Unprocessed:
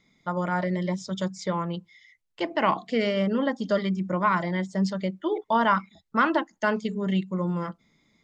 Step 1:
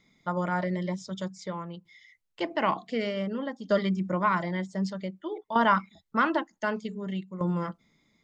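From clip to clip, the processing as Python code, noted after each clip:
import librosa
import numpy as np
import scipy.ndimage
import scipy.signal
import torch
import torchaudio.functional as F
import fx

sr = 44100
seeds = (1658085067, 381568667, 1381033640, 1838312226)

y = fx.tremolo_shape(x, sr, shape='saw_down', hz=0.54, depth_pct=70)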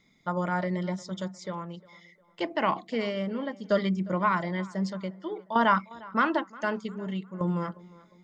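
y = fx.echo_tape(x, sr, ms=355, feedback_pct=45, wet_db=-20.5, lp_hz=3000.0, drive_db=7.0, wow_cents=6)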